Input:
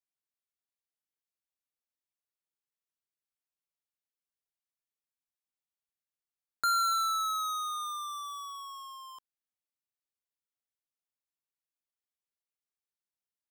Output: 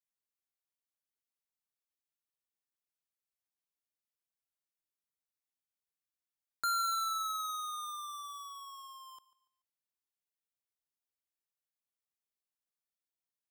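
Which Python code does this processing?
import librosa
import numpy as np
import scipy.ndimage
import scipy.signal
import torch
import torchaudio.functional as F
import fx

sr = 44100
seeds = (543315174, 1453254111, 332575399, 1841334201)

p1 = fx.high_shelf(x, sr, hz=7800.0, db=4.0)
p2 = p1 + fx.echo_feedback(p1, sr, ms=144, feedback_pct=35, wet_db=-19, dry=0)
y = p2 * 10.0 ** (-5.0 / 20.0)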